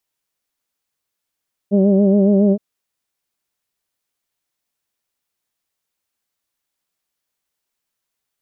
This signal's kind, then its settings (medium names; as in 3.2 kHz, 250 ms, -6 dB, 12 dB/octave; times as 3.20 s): formant vowel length 0.87 s, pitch 196 Hz, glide +0.5 st, vibrato 7.2 Hz, vibrato depth 0.65 st, F1 290 Hz, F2 600 Hz, F3 3 kHz